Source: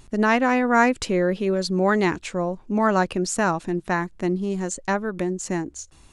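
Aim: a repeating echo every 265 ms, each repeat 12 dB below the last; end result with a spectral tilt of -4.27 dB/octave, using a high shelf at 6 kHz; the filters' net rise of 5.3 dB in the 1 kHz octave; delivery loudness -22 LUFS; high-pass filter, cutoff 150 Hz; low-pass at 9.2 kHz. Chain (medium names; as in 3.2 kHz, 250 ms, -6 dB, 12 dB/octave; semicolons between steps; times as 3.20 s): high-pass 150 Hz; low-pass 9.2 kHz; peaking EQ 1 kHz +6.5 dB; treble shelf 6 kHz +8.5 dB; feedback delay 265 ms, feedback 25%, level -12 dB; trim -1.5 dB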